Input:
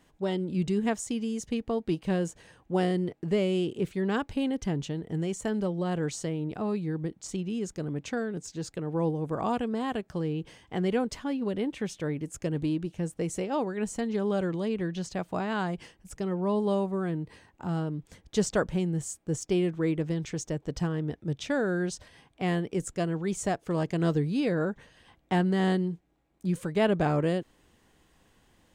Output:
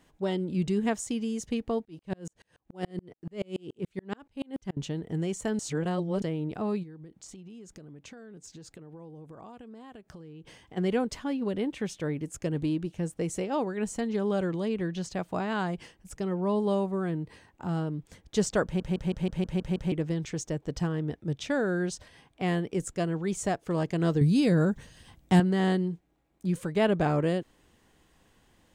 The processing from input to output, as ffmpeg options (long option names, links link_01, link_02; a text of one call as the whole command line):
ffmpeg -i in.wav -filter_complex "[0:a]asettb=1/sr,asplit=3[link_01][link_02][link_03];[link_01]atrim=end=1.854[link_04];[link_02]atrim=start=1.85:end=4.77,asetpts=PTS-STARTPTS,afade=type=in:duration=0.004:curve=qsin,afade=type=out:start_time=2.916:duration=0.004:curve=qsin,aeval=exprs='val(0)*pow(10,-39*if(lt(mod(-7*n/s,1),2*abs(-7)/1000),1-mod(-7*n/s,1)/(2*abs(-7)/1000),(mod(-7*n/s,1)-2*abs(-7)/1000)/(1-2*abs(-7)/1000))/20)':channel_layout=same[link_05];[link_03]atrim=start=4.766[link_06];[link_04][link_05]acrossfade=duration=0.004:curve1=hsin:curve2=qsin[link_07];[link_07][link_06]acrossfade=duration=0.004:curve1=qsin:curve2=hsin,asplit=3[link_08][link_09][link_10];[link_08]afade=type=out:start_time=6.82:duration=0.02[link_11];[link_09]acompressor=threshold=-43dB:ratio=10:attack=3.2:release=140:knee=1:detection=peak,afade=type=in:start_time=6.82:duration=0.02,afade=type=out:start_time=10.76:duration=0.02[link_12];[link_10]afade=type=in:start_time=10.76:duration=0.02[link_13];[link_11][link_12][link_13]amix=inputs=3:normalize=0,asettb=1/sr,asplit=3[link_14][link_15][link_16];[link_14]atrim=end=24.214[link_17];[link_15]atrim=start=24.21:end=25.4,asetpts=PTS-STARTPTS,afade=type=in:duration=0.004:curve=qsin,afade=type=out:start_time=1.186:duration=0.004:curve=qsin,bass=frequency=250:gain=10,treble=frequency=4000:gain=11[link_18];[link_16]atrim=start=25.396[link_19];[link_17][link_18]acrossfade=duration=0.004:curve1=hsin:curve2=qsin[link_20];[link_20][link_19]acrossfade=duration=0.004:curve1=qsin:curve2=hsin,asplit=11[link_21][link_22][link_23][link_24][link_25][link_26][link_27][link_28][link_29][link_30][link_31];[link_21]atrim=end=5.592[link_32];[link_22]atrim=start=5.588:end=6.222,asetpts=PTS-STARTPTS,areverse[link_33];[link_23]atrim=start=6.218:end=18.802[link_34];[link_24]atrim=start=18.638:end=18.802[link_35];[link_25]atrim=start=18.638:end=18.802[link_36];[link_26]atrim=start=18.638:end=18.802[link_37];[link_27]atrim=start=18.638:end=18.802[link_38];[link_28]atrim=start=18.638:end=18.802[link_39];[link_29]atrim=start=18.638:end=18.802[link_40];[link_30]atrim=start=18.638:end=18.802[link_41];[link_31]atrim=start=19.918[link_42];[link_32][link_33]acrossfade=duration=0.004:curve1=hsin:curve2=hsin[link_43];[link_43][link_34]acrossfade=duration=0.004:curve1=hsin:curve2=hsin[link_44];[link_44][link_35]acrossfade=duration=0.004:curve1=hsin:curve2=hsin[link_45];[link_45][link_36]acrossfade=duration=0.004:curve1=hsin:curve2=hsin[link_46];[link_46][link_37]acrossfade=duration=0.004:curve1=hsin:curve2=hsin[link_47];[link_47][link_38]acrossfade=duration=0.004:curve1=hsin:curve2=hsin[link_48];[link_48][link_39]acrossfade=duration=0.004:curve1=hsin:curve2=hsin[link_49];[link_49][link_40]acrossfade=duration=0.004:curve1=hsin:curve2=hsin[link_50];[link_50][link_41]acrossfade=duration=0.004:curve1=hsin:curve2=hsin[link_51];[link_51][link_42]acrossfade=duration=0.004:curve1=hsin:curve2=hsin" out.wav